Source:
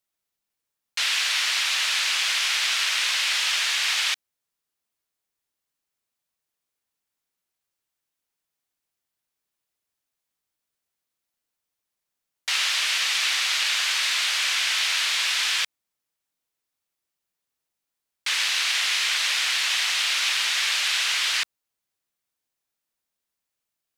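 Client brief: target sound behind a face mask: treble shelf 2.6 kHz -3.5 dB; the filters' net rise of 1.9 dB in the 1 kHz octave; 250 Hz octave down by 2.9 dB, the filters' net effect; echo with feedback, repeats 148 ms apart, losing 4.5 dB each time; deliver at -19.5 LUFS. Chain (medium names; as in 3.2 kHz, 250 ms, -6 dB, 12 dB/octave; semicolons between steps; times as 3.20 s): peaking EQ 250 Hz -4.5 dB; peaking EQ 1 kHz +3.5 dB; treble shelf 2.6 kHz -3.5 dB; feedback delay 148 ms, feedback 60%, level -4.5 dB; trim +2 dB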